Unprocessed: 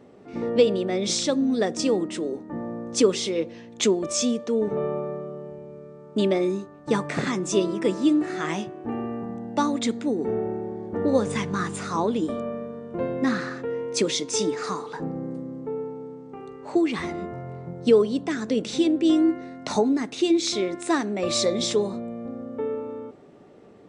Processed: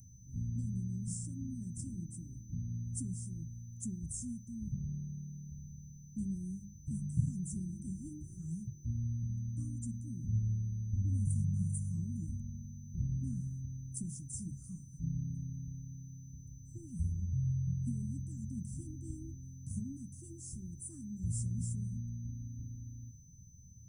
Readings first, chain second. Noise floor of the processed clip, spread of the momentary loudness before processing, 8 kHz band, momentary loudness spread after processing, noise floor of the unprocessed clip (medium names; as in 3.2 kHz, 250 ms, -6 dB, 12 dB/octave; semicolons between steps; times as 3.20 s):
-53 dBFS, 13 LU, -14.0 dB, 13 LU, -46 dBFS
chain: whistle 6.1 kHz -38 dBFS; inverse Chebyshev band-stop 430–4100 Hz, stop band 70 dB; hum notches 50/100/150/200 Hz; trim +14 dB